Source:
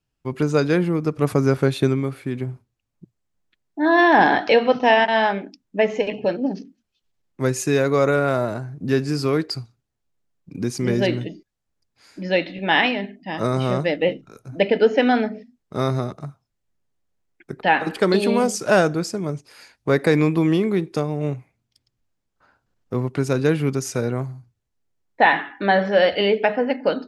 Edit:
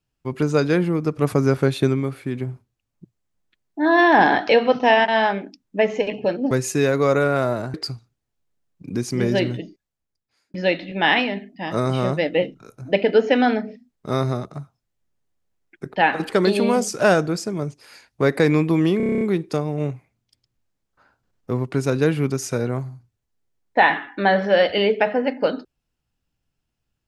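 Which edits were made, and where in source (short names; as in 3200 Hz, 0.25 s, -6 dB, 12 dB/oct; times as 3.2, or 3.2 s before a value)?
6.51–7.43 cut
8.66–9.41 cut
11.24–12.21 fade out
20.64 stutter 0.03 s, 9 plays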